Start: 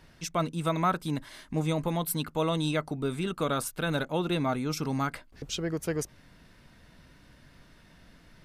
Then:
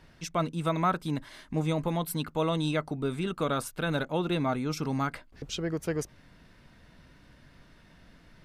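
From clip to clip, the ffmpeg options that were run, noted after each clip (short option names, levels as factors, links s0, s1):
-af "highshelf=f=6400:g=-6.5"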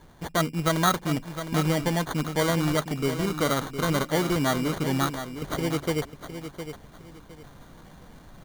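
-af "acrusher=samples=17:mix=1:aa=0.000001,aecho=1:1:710|1420|2130:0.316|0.0727|0.0167,areverse,acompressor=mode=upward:threshold=0.00562:ratio=2.5,areverse,volume=1.58"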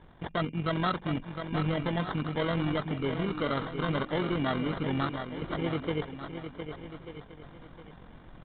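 -af "tremolo=f=45:d=0.571,aresample=8000,asoftclip=type=tanh:threshold=0.0794,aresample=44100,aecho=1:1:1192:0.224"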